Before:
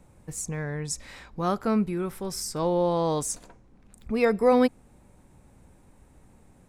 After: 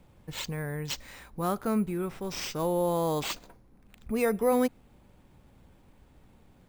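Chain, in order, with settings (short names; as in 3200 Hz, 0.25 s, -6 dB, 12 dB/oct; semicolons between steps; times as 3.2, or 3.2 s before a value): in parallel at -2 dB: limiter -18.5 dBFS, peak gain reduction 8.5 dB; on the sum: careless resampling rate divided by 4×, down none, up hold; gain -7.5 dB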